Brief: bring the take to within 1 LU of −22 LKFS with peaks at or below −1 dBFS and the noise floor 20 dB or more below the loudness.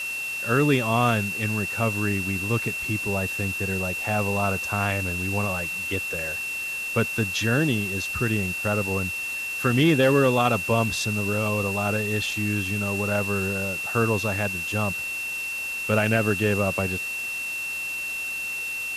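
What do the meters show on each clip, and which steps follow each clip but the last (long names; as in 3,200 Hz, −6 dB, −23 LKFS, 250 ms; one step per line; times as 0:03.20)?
interfering tone 2,700 Hz; level of the tone −28 dBFS; background noise floor −31 dBFS; target noise floor −45 dBFS; integrated loudness −24.5 LKFS; sample peak −7.5 dBFS; target loudness −22.0 LKFS
→ notch filter 2,700 Hz, Q 30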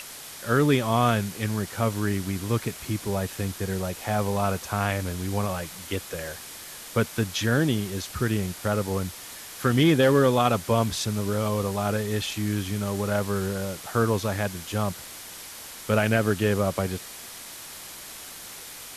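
interfering tone none found; background noise floor −41 dBFS; target noise floor −46 dBFS
→ noise reduction from a noise print 6 dB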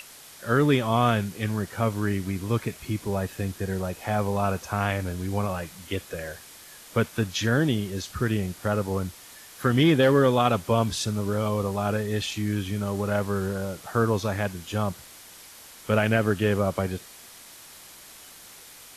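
background noise floor −47 dBFS; integrated loudness −26.0 LKFS; sample peak −8.0 dBFS; target loudness −22.0 LKFS
→ level +4 dB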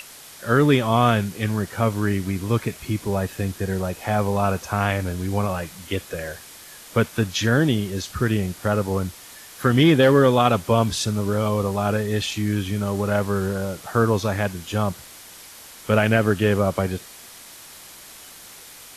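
integrated loudness −22.0 LKFS; sample peak −4.0 dBFS; background noise floor −43 dBFS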